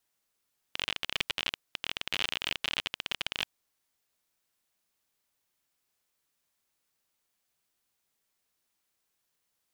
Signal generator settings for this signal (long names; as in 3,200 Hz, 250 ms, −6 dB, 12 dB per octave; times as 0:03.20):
Geiger counter clicks 37 per second −13.5 dBFS 2.73 s